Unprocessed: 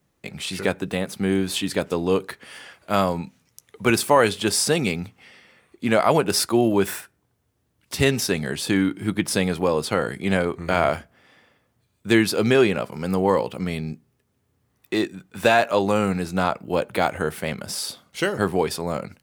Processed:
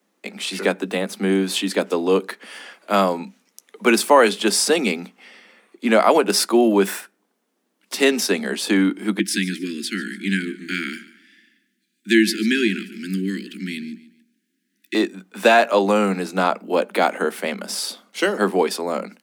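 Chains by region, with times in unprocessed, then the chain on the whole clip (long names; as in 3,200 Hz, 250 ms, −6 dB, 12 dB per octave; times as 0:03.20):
0:09.19–0:14.95: Chebyshev band-stop filter 340–1,600 Hz, order 4 + repeating echo 144 ms, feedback 33%, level −17 dB
whole clip: Butterworth high-pass 190 Hz 96 dB per octave; high-shelf EQ 11,000 Hz −4.5 dB; level +3.5 dB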